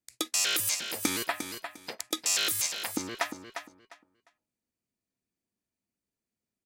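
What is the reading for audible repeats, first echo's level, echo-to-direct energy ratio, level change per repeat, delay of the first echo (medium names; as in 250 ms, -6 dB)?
3, -8.5 dB, -8.5 dB, -13.0 dB, 352 ms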